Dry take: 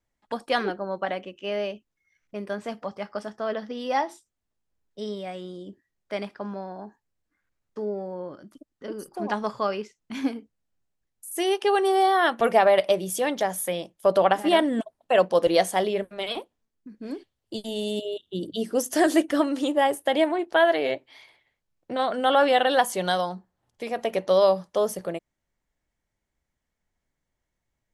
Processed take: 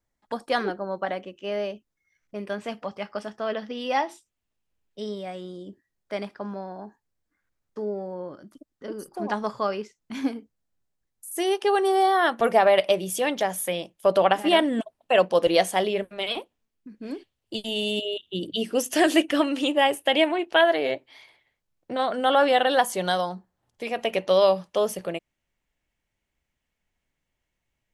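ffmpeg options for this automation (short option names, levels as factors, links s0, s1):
-af "asetnsamples=n=441:p=0,asendcmd='2.39 equalizer g 6.5;5.02 equalizer g -2;12.64 equalizer g 5;17.55 equalizer g 12;20.61 equalizer g 0.5;23.85 equalizer g 9',equalizer=f=2700:t=o:w=0.62:g=-3.5"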